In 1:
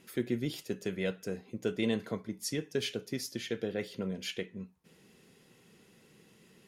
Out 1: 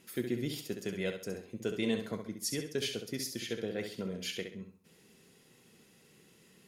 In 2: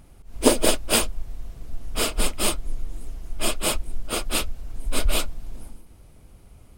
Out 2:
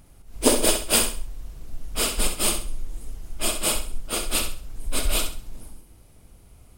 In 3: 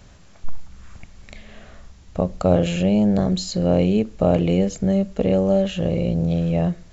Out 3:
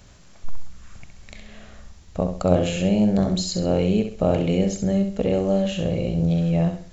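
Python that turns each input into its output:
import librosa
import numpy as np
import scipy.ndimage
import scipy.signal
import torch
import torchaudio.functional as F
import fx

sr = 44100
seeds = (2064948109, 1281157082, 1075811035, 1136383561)

p1 = fx.high_shelf(x, sr, hz=4300.0, db=5.5)
p2 = p1 + fx.echo_feedback(p1, sr, ms=66, feedback_pct=33, wet_db=-7.5, dry=0)
y = F.gain(torch.from_numpy(p2), -2.5).numpy()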